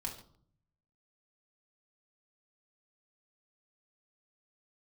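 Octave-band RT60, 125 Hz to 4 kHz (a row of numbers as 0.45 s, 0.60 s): 1.1 s, 0.80 s, 0.60 s, 0.55 s, 0.35 s, 0.40 s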